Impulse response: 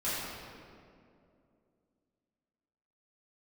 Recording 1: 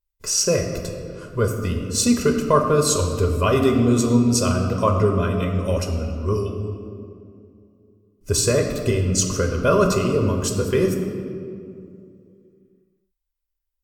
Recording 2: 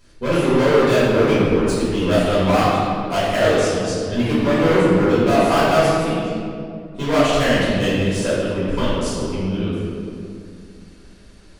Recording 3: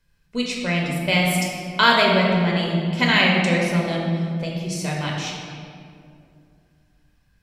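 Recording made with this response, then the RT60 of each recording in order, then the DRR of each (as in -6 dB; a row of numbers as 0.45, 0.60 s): 2; 2.5, 2.5, 2.5 s; 3.0, -12.5, -2.5 dB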